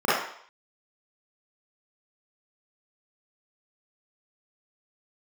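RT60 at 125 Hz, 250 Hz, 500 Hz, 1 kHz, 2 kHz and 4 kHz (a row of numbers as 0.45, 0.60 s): 0.35, 0.45, 0.60, 0.65, 0.60, 0.65 s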